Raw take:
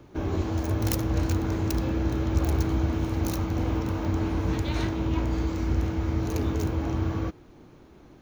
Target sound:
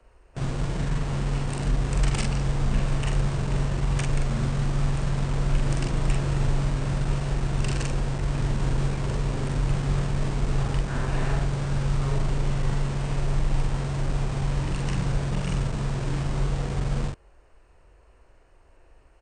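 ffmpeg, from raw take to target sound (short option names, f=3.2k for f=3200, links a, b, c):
-filter_complex "[0:a]acrossover=split=160|850|5100[a][b][c][d];[b]acrusher=bits=5:mix=0:aa=0.000001[e];[d]aeval=exprs='0.0562*(abs(mod(val(0)/0.0562+3,4)-2)-1)':c=same[f];[a][e][c][f]amix=inputs=4:normalize=0,asplit=2[g][h];[h]adelay=19,volume=-3dB[i];[g][i]amix=inputs=2:normalize=0,asetrate=18846,aresample=44100"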